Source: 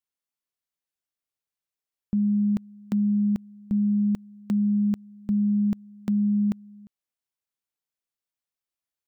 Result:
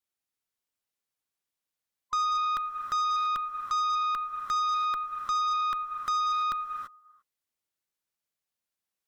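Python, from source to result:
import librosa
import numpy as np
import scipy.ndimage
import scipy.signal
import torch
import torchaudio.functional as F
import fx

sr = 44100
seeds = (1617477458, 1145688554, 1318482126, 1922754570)

y = fx.band_swap(x, sr, width_hz=1000)
y = fx.rev_gated(y, sr, seeds[0], gate_ms=360, shape='rising', drr_db=5.5)
y = fx.cheby_harmonics(y, sr, harmonics=(5, 6, 8), levels_db=(-17, -21, -34), full_scale_db=-18.0)
y = F.gain(torch.from_numpy(y), -3.5).numpy()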